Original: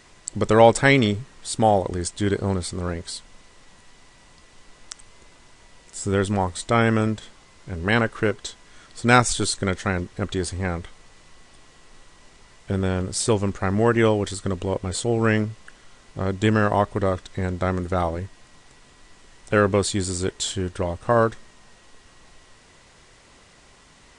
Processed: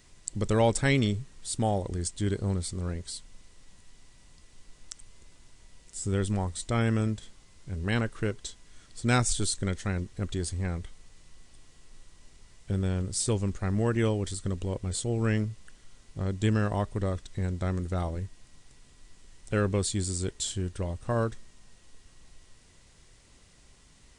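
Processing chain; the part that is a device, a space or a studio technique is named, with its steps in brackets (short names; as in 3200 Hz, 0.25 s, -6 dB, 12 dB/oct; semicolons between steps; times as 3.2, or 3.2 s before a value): smiley-face EQ (low shelf 110 Hz +7.5 dB; bell 1000 Hz -6.5 dB 2.7 oct; high shelf 8900 Hz +7 dB); gain -6.5 dB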